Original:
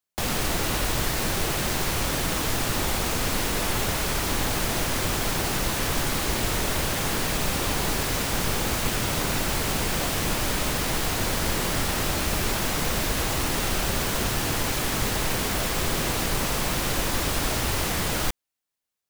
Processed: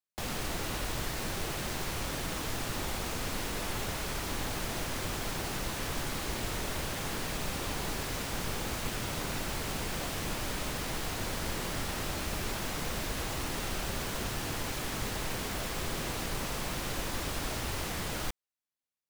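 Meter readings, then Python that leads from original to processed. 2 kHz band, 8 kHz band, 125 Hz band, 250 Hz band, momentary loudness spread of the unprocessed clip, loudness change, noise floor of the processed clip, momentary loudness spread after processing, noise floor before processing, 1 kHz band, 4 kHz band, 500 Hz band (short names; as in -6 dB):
-9.0 dB, -10.5 dB, -9.0 dB, -9.0 dB, 0 LU, -10.0 dB, -43 dBFS, 0 LU, -33 dBFS, -9.0 dB, -9.5 dB, -9.0 dB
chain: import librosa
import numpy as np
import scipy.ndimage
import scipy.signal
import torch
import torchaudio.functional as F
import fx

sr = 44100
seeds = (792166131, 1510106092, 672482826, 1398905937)

y = fx.high_shelf(x, sr, hz=8900.0, db=-3.5)
y = y * librosa.db_to_amplitude(-9.0)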